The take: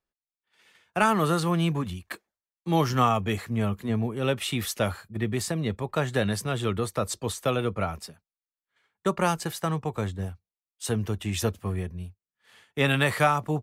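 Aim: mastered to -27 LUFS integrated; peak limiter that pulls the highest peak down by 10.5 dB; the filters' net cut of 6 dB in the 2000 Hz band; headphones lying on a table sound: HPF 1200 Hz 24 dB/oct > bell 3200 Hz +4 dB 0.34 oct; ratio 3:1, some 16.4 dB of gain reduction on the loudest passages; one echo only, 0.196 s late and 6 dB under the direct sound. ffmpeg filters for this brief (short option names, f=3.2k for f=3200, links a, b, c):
-af "equalizer=f=2k:t=o:g=-8.5,acompressor=threshold=-42dB:ratio=3,alimiter=level_in=11.5dB:limit=-24dB:level=0:latency=1,volume=-11.5dB,highpass=f=1.2k:w=0.5412,highpass=f=1.2k:w=1.3066,equalizer=f=3.2k:t=o:w=0.34:g=4,aecho=1:1:196:0.501,volume=24dB"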